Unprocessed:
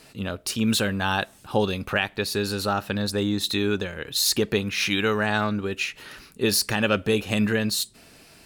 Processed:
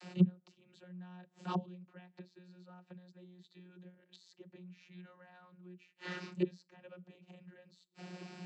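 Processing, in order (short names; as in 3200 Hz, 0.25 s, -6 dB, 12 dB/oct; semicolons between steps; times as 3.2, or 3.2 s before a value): flipped gate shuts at -24 dBFS, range -35 dB; vocoder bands 32, saw 180 Hz; gain +9 dB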